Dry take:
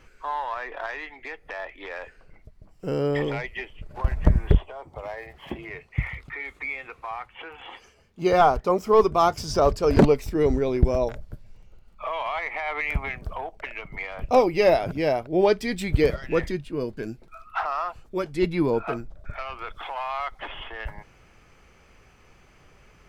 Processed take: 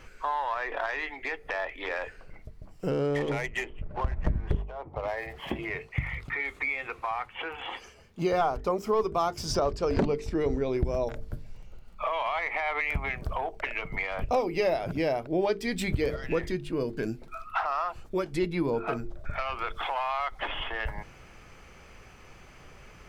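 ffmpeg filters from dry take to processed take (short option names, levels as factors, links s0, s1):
-filter_complex "[0:a]asettb=1/sr,asplit=3[s0][s1][s2];[s0]atrim=end=2.904[s3];[s1]atrim=start=2.9:end=5.08,asetpts=PTS-STARTPTS,afade=t=in:d=0.004:c=qsin,afade=t=out:st=2.176:d=0.004:c=qsin,adynamicsmooth=sensitivity=6.5:basefreq=1600[s4];[s2]atrim=start=5.076[s5];[s3][s4]acrossfade=d=0.004:c1=hsin:c2=qsin[s6];[s6][s5]acrossfade=d=0.004:c1=qsin:c2=hsin,asettb=1/sr,asplit=3[s7][s8][s9];[s7]atrim=end=9.554[s10];[s8]atrim=start=9.55:end=10.73,asetpts=PTS-STARTPTS,afade=t=in:d=0.004:c=qsin,afade=t=out:st=1.176:d=0.004:c=qsin,lowpass=7000[s11];[s9]atrim=start=10.726[s12];[s10][s11]acrossfade=d=0.004:c1=hsin:c2=qsin[s13];[s13][s12]acrossfade=d=0.004:c1=qsin:c2=hsin,bandreject=f=50:t=h:w=6,bandreject=f=100:t=h:w=6,bandreject=f=150:t=h:w=6,bandreject=f=200:t=h:w=6,bandreject=f=250:t=h:w=6,bandreject=f=300:t=h:w=6,bandreject=f=350:t=h:w=6,bandreject=f=400:t=h:w=6,bandreject=f=450:t=h:w=6,acompressor=threshold=0.0251:ratio=3,volume=1.68"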